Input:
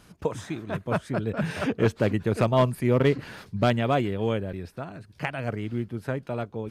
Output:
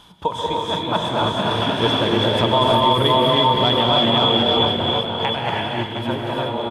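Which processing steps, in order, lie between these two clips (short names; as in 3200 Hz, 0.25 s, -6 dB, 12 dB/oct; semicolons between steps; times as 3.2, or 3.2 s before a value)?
regenerating reverse delay 0.358 s, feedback 41%, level -3 dB; notches 50/100/150 Hz; non-linear reverb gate 0.36 s rising, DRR -1.5 dB; reverse; upward compressor, threshold -32 dBFS; reverse; bell 3300 Hz +10.5 dB 0.43 oct; small resonant body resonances 930/3400 Hz, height 16 dB, ringing for 20 ms; on a send: echo 0.321 s -13 dB; on the sum: limiter -6.5 dBFS, peak gain reduction 8 dB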